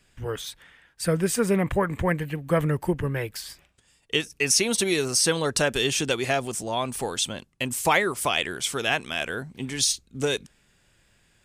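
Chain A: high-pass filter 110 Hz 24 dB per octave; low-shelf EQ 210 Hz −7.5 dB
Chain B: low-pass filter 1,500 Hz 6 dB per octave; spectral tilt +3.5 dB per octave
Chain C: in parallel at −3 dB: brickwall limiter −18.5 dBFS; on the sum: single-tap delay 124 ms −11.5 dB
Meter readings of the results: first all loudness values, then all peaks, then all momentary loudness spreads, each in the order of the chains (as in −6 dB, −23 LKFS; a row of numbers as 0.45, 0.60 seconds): −26.0, −28.0, −22.0 LKFS; −7.5, −9.5, −5.5 dBFS; 11, 11, 10 LU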